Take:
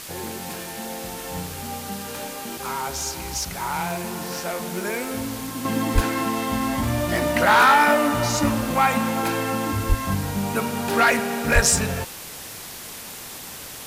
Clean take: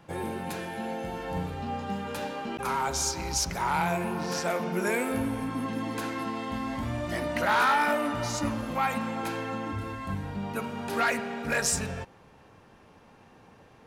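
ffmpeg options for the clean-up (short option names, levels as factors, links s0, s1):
-filter_complex "[0:a]asplit=3[s0][s1][s2];[s0]afade=t=out:st=5.94:d=0.02[s3];[s1]highpass=f=140:w=0.5412,highpass=f=140:w=1.3066,afade=t=in:st=5.94:d=0.02,afade=t=out:st=6.06:d=0.02[s4];[s2]afade=t=in:st=6.06:d=0.02[s5];[s3][s4][s5]amix=inputs=3:normalize=0,asplit=3[s6][s7][s8];[s6]afade=t=out:st=9.88:d=0.02[s9];[s7]highpass=f=140:w=0.5412,highpass=f=140:w=1.3066,afade=t=in:st=9.88:d=0.02,afade=t=out:st=10:d=0.02[s10];[s8]afade=t=in:st=10:d=0.02[s11];[s9][s10][s11]amix=inputs=3:normalize=0,asplit=3[s12][s13][s14];[s12]afade=t=out:st=11.54:d=0.02[s15];[s13]highpass=f=140:w=0.5412,highpass=f=140:w=1.3066,afade=t=in:st=11.54:d=0.02,afade=t=out:st=11.66:d=0.02[s16];[s14]afade=t=in:st=11.66:d=0.02[s17];[s15][s16][s17]amix=inputs=3:normalize=0,afwtdn=0.016,asetnsamples=n=441:p=0,asendcmd='5.65 volume volume -8.5dB',volume=1"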